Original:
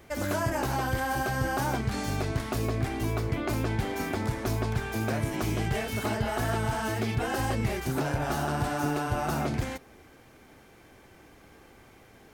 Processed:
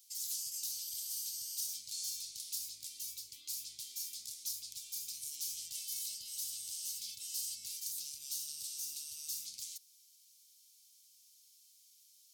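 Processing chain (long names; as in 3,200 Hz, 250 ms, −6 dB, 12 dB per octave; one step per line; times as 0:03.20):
inverse Chebyshev high-pass filter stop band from 1,800 Hz, stop band 50 dB
level +4 dB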